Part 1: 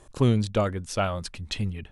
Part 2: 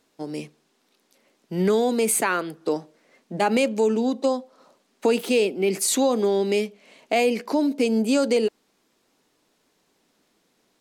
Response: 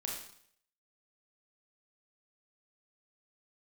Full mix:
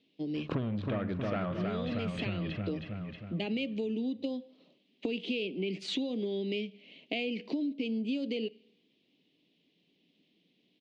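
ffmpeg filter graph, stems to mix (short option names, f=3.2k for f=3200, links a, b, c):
-filter_complex "[0:a]asoftclip=type=tanh:threshold=-25dB,adelay=350,volume=2dB,asplit=3[a][b][c];[b]volume=-12dB[d];[c]volume=-4dB[e];[1:a]firequalizer=gain_entry='entry(230,0);entry(1400,-23);entry(2000,-4);entry(3000,11)':delay=0.05:min_phase=1,volume=-11dB,asplit=3[f][g][h];[g]volume=-23dB[i];[h]apad=whole_len=99829[j];[a][j]sidechaincompress=threshold=-43dB:ratio=8:attack=16:release=218[k];[2:a]atrim=start_sample=2205[l];[d][i]amix=inputs=2:normalize=0[m];[m][l]afir=irnorm=-1:irlink=0[n];[e]aecho=0:1:316|632|948|1264|1580|1896|2212:1|0.5|0.25|0.125|0.0625|0.0312|0.0156[o];[k][f][n][o]amix=inputs=4:normalize=0,acontrast=77,highpass=110,equalizer=f=170:t=q:w=4:g=7,equalizer=f=290:t=q:w=4:g=5,equalizer=f=880:t=q:w=4:g=-5,lowpass=f=2.9k:w=0.5412,lowpass=f=2.9k:w=1.3066,acompressor=threshold=-31dB:ratio=6"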